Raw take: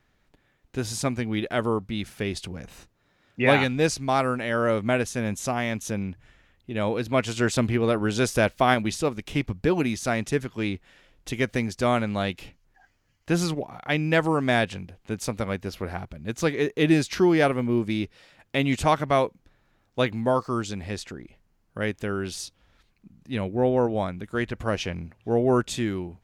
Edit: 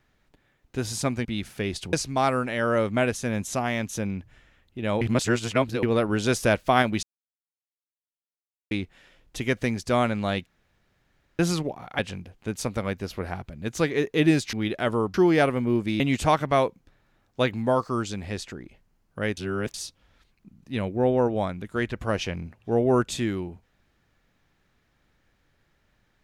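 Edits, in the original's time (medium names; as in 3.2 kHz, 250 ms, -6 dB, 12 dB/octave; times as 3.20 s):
1.25–1.86 s: move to 17.16 s
2.54–3.85 s: delete
6.93–7.75 s: reverse
8.95–10.63 s: mute
12.38–13.31 s: room tone
13.91–14.62 s: delete
18.02–18.59 s: delete
21.96–22.33 s: reverse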